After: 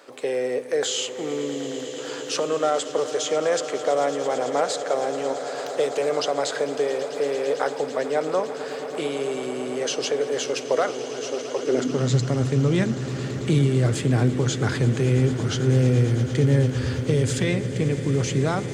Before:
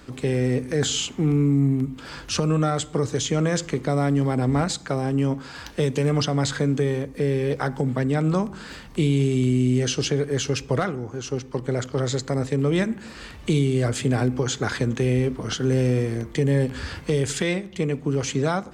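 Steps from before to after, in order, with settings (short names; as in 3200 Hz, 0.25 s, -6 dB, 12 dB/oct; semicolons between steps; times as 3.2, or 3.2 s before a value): swelling echo 0.111 s, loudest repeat 8, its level -17.5 dB; high-pass sweep 540 Hz -> 93 Hz, 11.55–12.28; gain -1.5 dB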